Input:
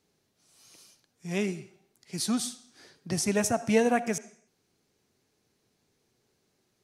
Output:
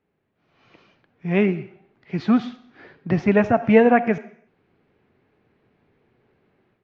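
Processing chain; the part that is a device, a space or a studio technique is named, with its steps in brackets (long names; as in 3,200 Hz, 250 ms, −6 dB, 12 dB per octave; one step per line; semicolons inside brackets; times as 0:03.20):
action camera in a waterproof case (low-pass filter 2,500 Hz 24 dB per octave; automatic gain control gain up to 11 dB; AAC 48 kbit/s 16,000 Hz)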